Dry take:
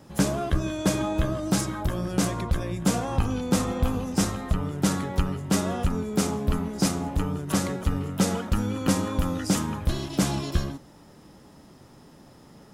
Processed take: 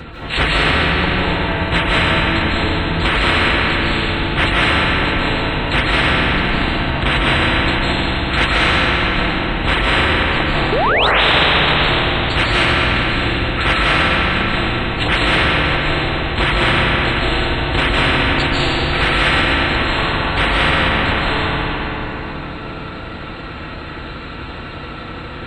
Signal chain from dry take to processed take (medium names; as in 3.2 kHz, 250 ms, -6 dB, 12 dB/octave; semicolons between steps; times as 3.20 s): rotating-head pitch shifter -11 st; bass shelf 66 Hz -11.5 dB; comb of notches 410 Hz; feedback echo behind a band-pass 212 ms, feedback 62%, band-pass 450 Hz, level -10 dB; speed mistake 15 ips tape played at 7.5 ips; treble shelf 2.1 kHz +5 dB; saturation -9.5 dBFS, distortion -33 dB; painted sound rise, 10.72–11.07 s, 380–4100 Hz -23 dBFS; reverb removal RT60 1.9 s; algorithmic reverb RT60 2.7 s, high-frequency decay 0.85×, pre-delay 115 ms, DRR -8 dB; loudness maximiser +15 dB; spectrum-flattening compressor 2:1; trim -1 dB